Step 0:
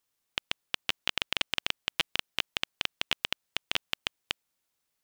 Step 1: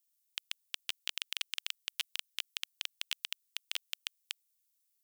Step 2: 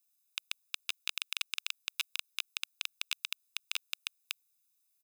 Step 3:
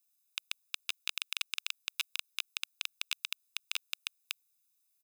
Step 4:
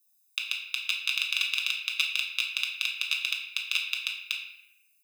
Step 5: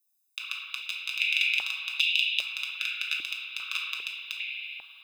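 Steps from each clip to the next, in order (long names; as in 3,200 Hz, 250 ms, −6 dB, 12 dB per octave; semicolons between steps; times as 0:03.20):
first difference
comb filter 0.8 ms, depth 77%
no processing that can be heard
spectral envelope exaggerated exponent 1.5; convolution reverb RT60 0.95 s, pre-delay 5 ms, DRR −2 dB; level +6 dB
spring reverb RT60 3.6 s, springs 58 ms, chirp 55 ms, DRR 1 dB; high-pass on a step sequencer 2.5 Hz 310–3,000 Hz; level −6 dB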